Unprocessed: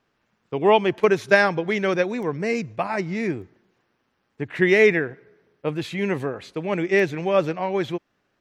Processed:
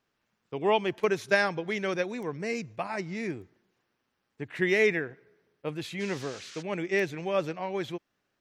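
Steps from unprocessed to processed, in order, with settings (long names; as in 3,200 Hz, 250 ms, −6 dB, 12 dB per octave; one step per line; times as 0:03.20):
high-shelf EQ 3,500 Hz +7 dB
0:05.99–0:06.61: noise in a band 1,300–6,600 Hz −39 dBFS
level −8.5 dB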